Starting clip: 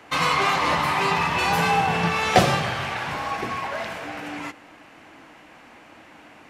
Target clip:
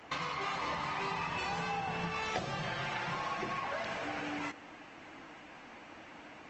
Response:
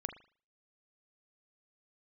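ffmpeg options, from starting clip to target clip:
-filter_complex "[0:a]asettb=1/sr,asplit=3[a][b][c];[a]atrim=end=2.584[d];[b]atrim=start=2.58:end=3.6,asetpts=PTS-STARTPTS,afade=t=in:d=0.004:c=qsin,afade=t=out:st=1.016:d=0.004:c=qsin,aecho=1:1:5.7:0.69,atrim=end_sample=44982[e];[c]atrim=start=3.596[f];[d][e]acrossfade=d=0.004:c1=hsin:c2=qsin[g];[g][f]acrossfade=d=0.004:c1=qsin:c2=hsin,acompressor=threshold=-30dB:ratio=8,aresample=16000,aresample=44100,volume=-3.5dB" -ar 48000 -c:a libopus -b:a 20k

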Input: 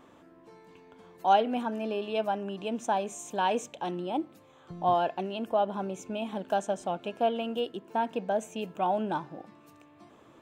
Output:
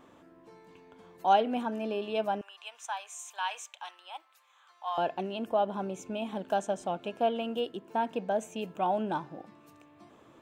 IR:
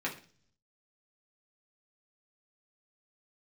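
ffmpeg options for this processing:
-filter_complex "[0:a]asettb=1/sr,asplit=3[a][b][c];[a]atrim=end=2.414[d];[b]atrim=start=2.41:end=4.98,asetpts=PTS-STARTPTS,afade=t=in:d=0.004:c=qsin,afade=t=out:st=2.566:d=0.004:c=qsin,highpass=f=1k:w=0.5412,highpass=f=1k:w=1.3066[e];[c]atrim=start=4.976[f];[d][e]acrossfade=d=0.004:c1=hsin:c2=qsin[g];[g][f]acrossfade=d=0.004:c1=qsin:c2=hsin,volume=-1dB"

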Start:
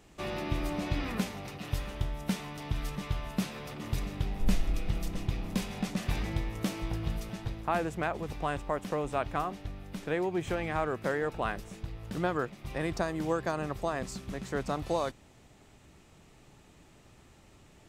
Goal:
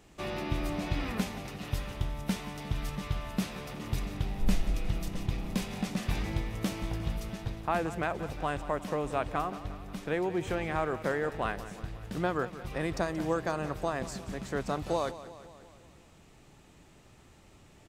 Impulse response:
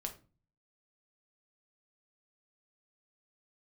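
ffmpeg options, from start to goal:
-af "aecho=1:1:178|356|534|712|890|1068:0.188|0.111|0.0656|0.0387|0.0228|0.0135"

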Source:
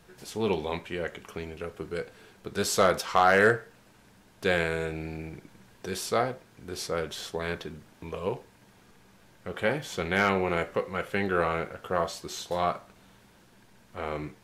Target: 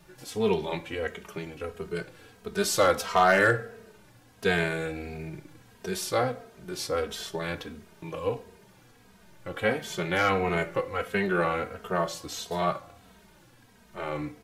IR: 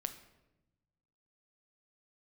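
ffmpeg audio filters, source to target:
-filter_complex "[0:a]asplit=2[a][b];[b]highshelf=f=10k:g=7.5[c];[1:a]atrim=start_sample=2205[d];[c][d]afir=irnorm=-1:irlink=0,volume=-4dB[e];[a][e]amix=inputs=2:normalize=0,asplit=2[f][g];[g]adelay=2.9,afreqshift=-1.5[h];[f][h]amix=inputs=2:normalize=1"

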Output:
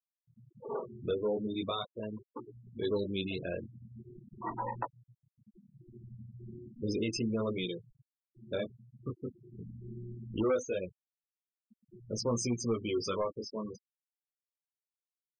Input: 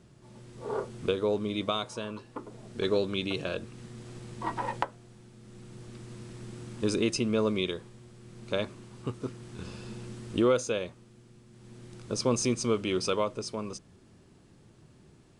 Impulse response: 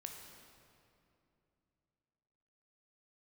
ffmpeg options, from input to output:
-af "flanger=delay=17:depth=6.3:speed=0.4,asoftclip=type=tanh:threshold=-23.5dB,afftfilt=real='re*gte(hypot(re,im),0.0224)':imag='im*gte(hypot(re,im),0.0224)':win_size=1024:overlap=0.75"

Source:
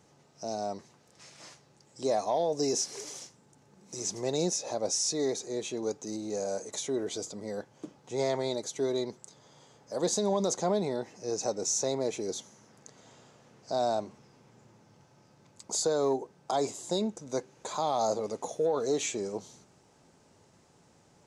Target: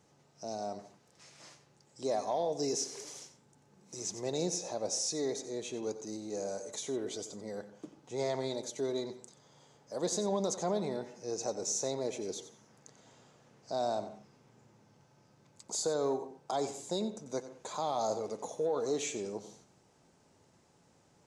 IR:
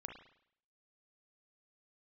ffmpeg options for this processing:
-filter_complex "[0:a]asplit=2[a][b];[1:a]atrim=start_sample=2205,atrim=end_sample=6174,adelay=91[c];[b][c]afir=irnorm=-1:irlink=0,volume=-7.5dB[d];[a][d]amix=inputs=2:normalize=0,volume=-4.5dB"

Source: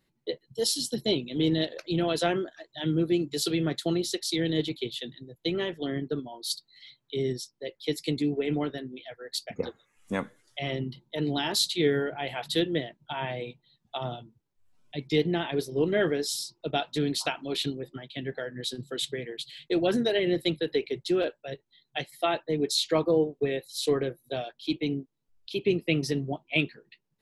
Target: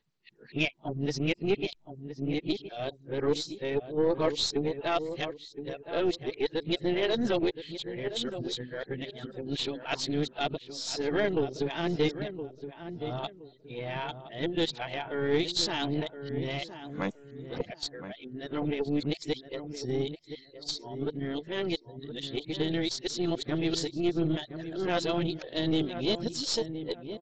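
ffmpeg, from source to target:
-filter_complex "[0:a]areverse,lowshelf=f=140:g=2,asplit=2[a][b];[b]adelay=1019,lowpass=f=1.5k:p=1,volume=-10dB,asplit=2[c][d];[d]adelay=1019,lowpass=f=1.5k:p=1,volume=0.28,asplit=2[e][f];[f]adelay=1019,lowpass=f=1.5k:p=1,volume=0.28[g];[c][e][g]amix=inputs=3:normalize=0[h];[a][h]amix=inputs=2:normalize=0,aeval=exprs='0.316*(cos(1*acos(clip(val(0)/0.316,-1,1)))-cos(1*PI/2))+0.00794*(cos(5*acos(clip(val(0)/0.316,-1,1)))-cos(5*PI/2))+0.0224*(cos(6*acos(clip(val(0)/0.316,-1,1)))-cos(6*PI/2))':c=same,volume=-3.5dB" -ar 16000 -c:a sbc -b:a 64k

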